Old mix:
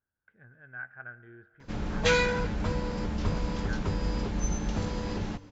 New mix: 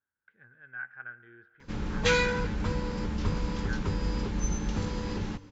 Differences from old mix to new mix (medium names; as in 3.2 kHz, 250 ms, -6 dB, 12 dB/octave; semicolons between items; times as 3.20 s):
speech: add tilt EQ +2.5 dB/octave; master: add peaking EQ 660 Hz -9.5 dB 0.31 oct